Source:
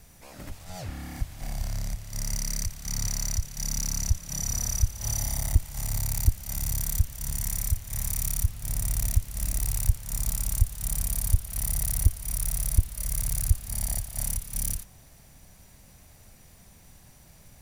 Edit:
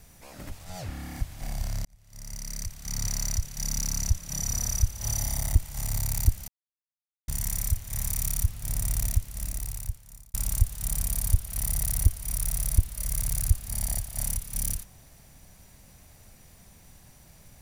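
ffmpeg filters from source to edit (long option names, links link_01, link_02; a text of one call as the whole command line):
ffmpeg -i in.wav -filter_complex "[0:a]asplit=5[link_01][link_02][link_03][link_04][link_05];[link_01]atrim=end=1.85,asetpts=PTS-STARTPTS,afade=type=out:start_time=1.846:duration=0.004:curve=hsin[link_06];[link_02]atrim=start=1.85:end=6.48,asetpts=PTS-STARTPTS,afade=type=in:duration=1.3,afade=type=out:start_time=4.626:duration=0.004:curve=hsin[link_07];[link_03]atrim=start=6.48:end=7.28,asetpts=PTS-STARTPTS,volume=0[link_08];[link_04]atrim=start=7.28:end=10.34,asetpts=PTS-STARTPTS,afade=type=in:duration=0.004:curve=hsin,afade=type=out:start_time=1.69:duration=1.37[link_09];[link_05]atrim=start=10.34,asetpts=PTS-STARTPTS,afade=type=in:duration=0.004:curve=hsin[link_10];[link_06][link_07][link_08][link_09][link_10]concat=n=5:v=0:a=1" out.wav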